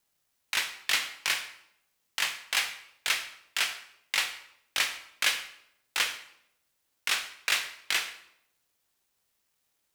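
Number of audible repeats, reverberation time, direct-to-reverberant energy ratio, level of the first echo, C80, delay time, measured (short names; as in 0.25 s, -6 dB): none, 0.75 s, 7.0 dB, none, 13.5 dB, none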